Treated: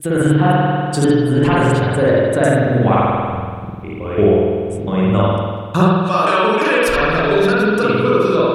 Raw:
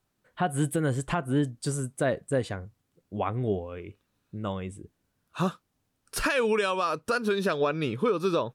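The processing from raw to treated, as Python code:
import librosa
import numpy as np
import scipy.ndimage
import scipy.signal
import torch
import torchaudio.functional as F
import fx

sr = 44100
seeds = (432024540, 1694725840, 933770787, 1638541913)

y = fx.block_reorder(x, sr, ms=174.0, group=5)
y = fx.rev_spring(y, sr, rt60_s=1.8, pass_ms=(48,), chirp_ms=35, drr_db=-7.5)
y = fx.rider(y, sr, range_db=4, speed_s=0.5)
y = y * 10.0 ** (7.0 / 20.0)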